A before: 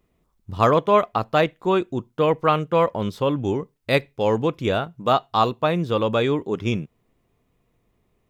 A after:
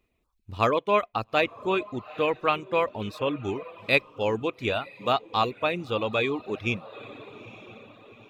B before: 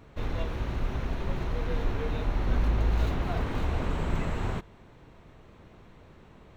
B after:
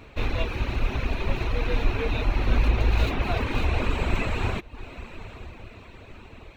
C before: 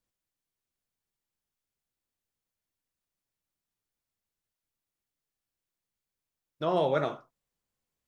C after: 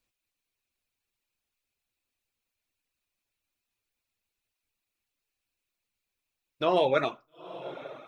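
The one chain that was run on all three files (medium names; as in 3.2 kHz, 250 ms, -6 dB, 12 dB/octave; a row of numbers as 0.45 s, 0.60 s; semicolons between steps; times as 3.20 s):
graphic EQ with 31 bands 160 Hz -10 dB, 2.5 kHz +11 dB, 4 kHz +5 dB; echo that smears into a reverb 894 ms, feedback 45%, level -15 dB; reverb removal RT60 0.66 s; normalise loudness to -27 LUFS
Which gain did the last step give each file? -5.5 dB, +6.0 dB, +3.5 dB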